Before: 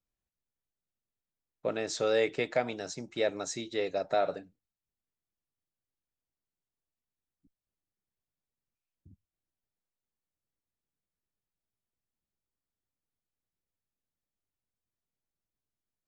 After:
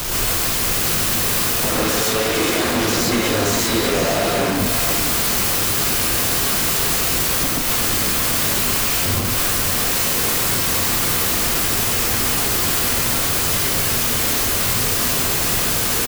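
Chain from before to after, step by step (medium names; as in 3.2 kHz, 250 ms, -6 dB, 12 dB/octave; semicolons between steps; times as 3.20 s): zero-crossing glitches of -28 dBFS; tilt EQ +3.5 dB/octave; Schmitt trigger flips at -34.5 dBFS; on a send: delay 494 ms -9 dB; on the sum: gated-style reverb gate 160 ms rising, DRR -4.5 dB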